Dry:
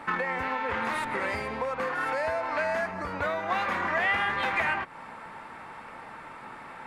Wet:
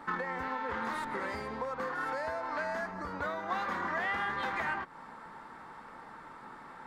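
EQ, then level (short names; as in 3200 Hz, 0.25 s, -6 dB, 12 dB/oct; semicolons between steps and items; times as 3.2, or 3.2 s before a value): fifteen-band EQ 100 Hz -7 dB, 630 Hz -5 dB, 2500 Hz -11 dB, 10000 Hz -6 dB; -3.0 dB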